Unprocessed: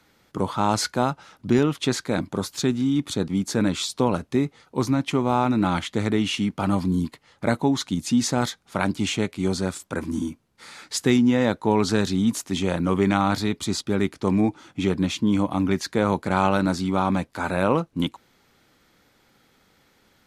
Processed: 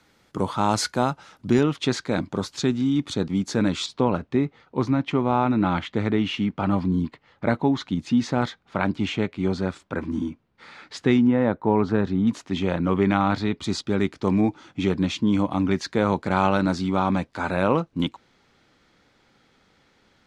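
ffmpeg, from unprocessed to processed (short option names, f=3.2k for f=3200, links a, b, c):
-af "asetnsamples=n=441:p=0,asendcmd='1.61 lowpass f 6100;3.86 lowpass f 3100;11.27 lowpass f 1600;12.27 lowpass f 3400;13.64 lowpass f 5900',lowpass=11k"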